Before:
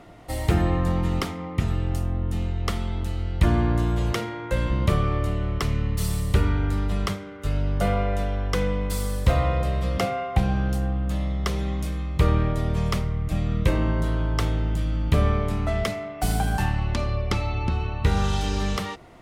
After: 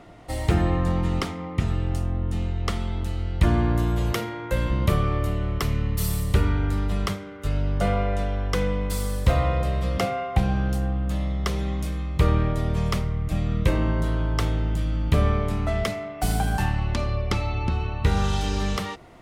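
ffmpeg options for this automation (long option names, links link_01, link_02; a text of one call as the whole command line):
ffmpeg -i in.wav -af "asetnsamples=nb_out_samples=441:pad=0,asendcmd='2.8 equalizer g -1.5;3.64 equalizer g 9;6.24 equalizer g 1.5;7.48 equalizer g -9.5;8.36 equalizer g 0',equalizer=frequency=13000:width_type=o:width=0.41:gain=-8" out.wav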